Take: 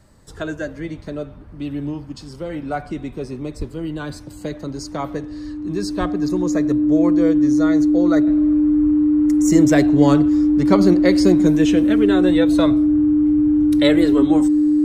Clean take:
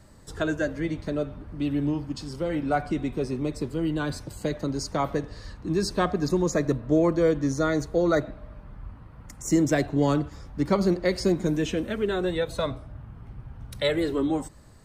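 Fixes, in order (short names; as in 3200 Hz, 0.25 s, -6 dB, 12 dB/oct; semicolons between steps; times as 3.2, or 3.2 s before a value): notch 300 Hz, Q 30; 3.58–3.7 HPF 140 Hz 24 dB/oct; 5.99–6.11 HPF 140 Hz 24 dB/oct; 8.27 gain correction -6.5 dB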